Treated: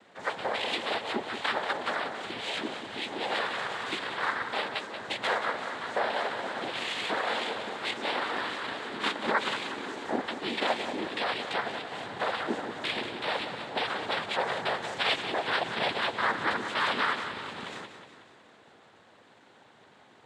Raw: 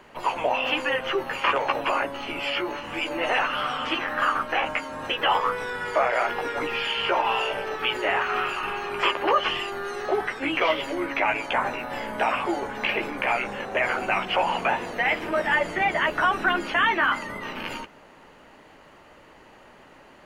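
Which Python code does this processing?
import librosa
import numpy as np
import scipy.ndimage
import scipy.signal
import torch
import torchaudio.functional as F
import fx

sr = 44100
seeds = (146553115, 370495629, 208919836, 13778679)

y = fx.high_shelf(x, sr, hz=3500.0, db=11.0, at=(14.82, 15.22))
y = fx.noise_vocoder(y, sr, seeds[0], bands=6)
y = fx.echo_feedback(y, sr, ms=183, feedback_pct=55, wet_db=-9.5)
y = y * librosa.db_to_amplitude(-6.5)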